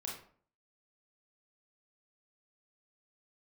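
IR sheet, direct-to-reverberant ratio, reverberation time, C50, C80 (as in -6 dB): -2.5 dB, 0.50 s, 4.5 dB, 9.0 dB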